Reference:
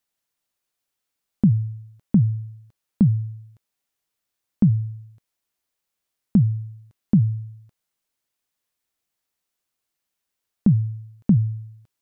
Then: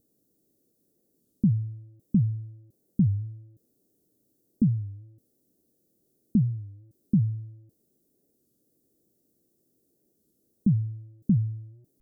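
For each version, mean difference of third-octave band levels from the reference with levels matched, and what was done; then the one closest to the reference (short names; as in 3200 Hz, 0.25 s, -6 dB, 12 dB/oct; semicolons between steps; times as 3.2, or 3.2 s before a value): 1.5 dB: switching spikes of -15 dBFS; inverse Chebyshev low-pass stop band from 920 Hz, stop band 50 dB; record warp 33 1/3 rpm, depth 160 cents; gain -5.5 dB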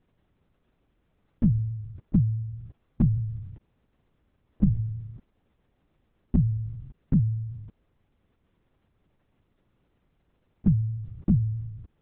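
3.0 dB: per-bin compression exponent 0.6; resonator 690 Hz, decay 0.31 s, mix 50%; LPC vocoder at 8 kHz whisper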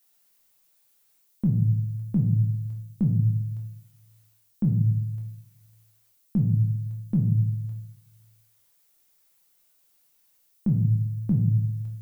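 7.0 dB: reverse; compressor 6:1, threshold -28 dBFS, peak gain reduction 15.5 dB; reverse; added noise violet -72 dBFS; shoebox room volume 120 m³, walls mixed, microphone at 0.82 m; gain +5 dB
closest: first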